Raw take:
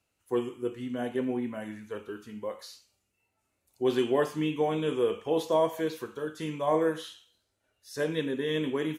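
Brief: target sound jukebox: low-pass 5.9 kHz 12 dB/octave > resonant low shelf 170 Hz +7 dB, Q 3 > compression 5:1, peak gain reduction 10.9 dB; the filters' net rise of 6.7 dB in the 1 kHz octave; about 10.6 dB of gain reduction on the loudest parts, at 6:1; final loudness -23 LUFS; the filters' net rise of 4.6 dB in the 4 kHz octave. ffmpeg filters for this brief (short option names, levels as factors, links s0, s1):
-af "equalizer=f=1000:t=o:g=8,equalizer=f=4000:t=o:g=6,acompressor=threshold=0.0398:ratio=6,lowpass=5900,lowshelf=f=170:t=q:w=3:g=7,acompressor=threshold=0.0126:ratio=5,volume=9.44"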